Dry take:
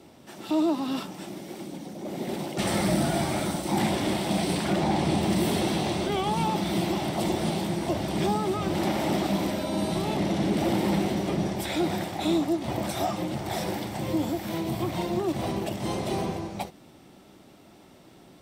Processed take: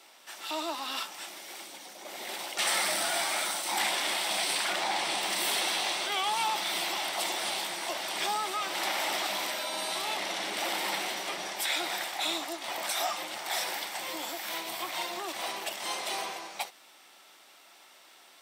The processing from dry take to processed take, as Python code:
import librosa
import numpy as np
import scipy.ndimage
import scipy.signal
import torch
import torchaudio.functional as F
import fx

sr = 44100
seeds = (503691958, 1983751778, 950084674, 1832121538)

y = scipy.signal.sosfilt(scipy.signal.butter(2, 1200.0, 'highpass', fs=sr, output='sos'), x)
y = y * 10.0 ** (5.0 / 20.0)